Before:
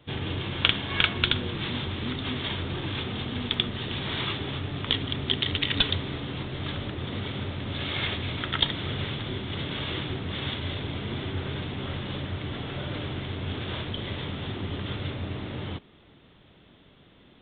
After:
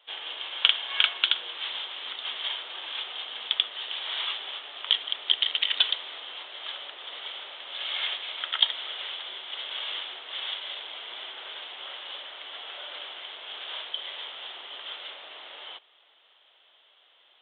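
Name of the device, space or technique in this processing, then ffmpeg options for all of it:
musical greeting card: -af "aresample=11025,aresample=44100,highpass=f=620:w=0.5412,highpass=f=620:w=1.3066,equalizer=f=3.1k:t=o:w=0.32:g=9,volume=-3.5dB"

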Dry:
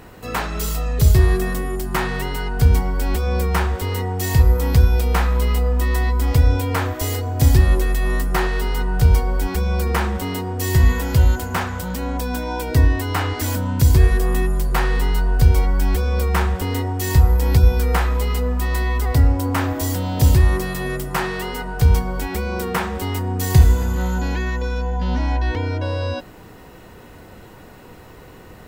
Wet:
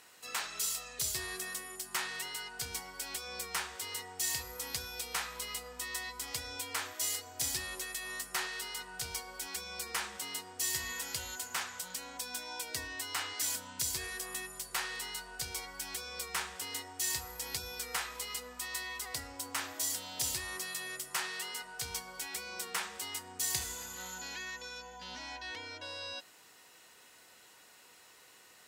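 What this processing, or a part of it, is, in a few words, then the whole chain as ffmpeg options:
piezo pickup straight into a mixer: -af "lowpass=8.7k,aderivative"

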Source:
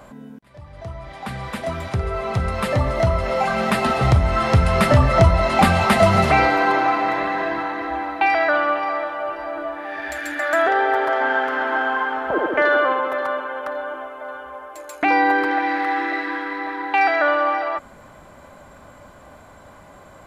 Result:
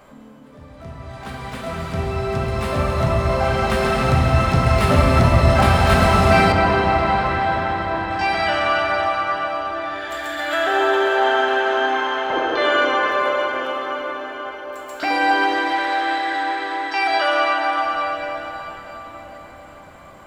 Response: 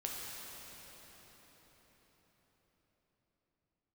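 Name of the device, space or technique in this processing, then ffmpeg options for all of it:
shimmer-style reverb: -filter_complex "[0:a]asplit=2[a][b];[b]asetrate=88200,aresample=44100,atempo=0.5,volume=-8dB[c];[a][c]amix=inputs=2:normalize=0[d];[1:a]atrim=start_sample=2205[e];[d][e]afir=irnorm=-1:irlink=0,asettb=1/sr,asplit=3[f][g][h];[f]atrim=end=6.524[i];[g]atrim=start=6.52:end=8.11,asetpts=PTS-STARTPTS,afade=t=in:d=0.004:c=qsin,afade=t=out:st=1.586:d=0.004:c=qsin,aemphasis=mode=reproduction:type=50kf[j];[h]atrim=start=8.106[k];[i][j]acrossfade=d=0.004:c1=hsin:c2=qsin[l];[l][k]acrossfade=d=0.004:c1=qsin:c2=hsin,volume=-2dB"

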